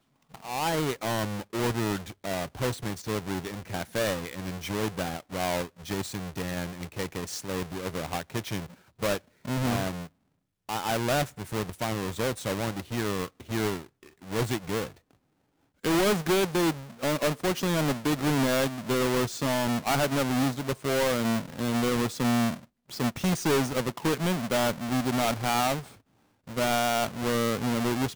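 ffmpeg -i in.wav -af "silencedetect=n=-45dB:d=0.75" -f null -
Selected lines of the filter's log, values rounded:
silence_start: 14.91
silence_end: 15.84 | silence_duration: 0.93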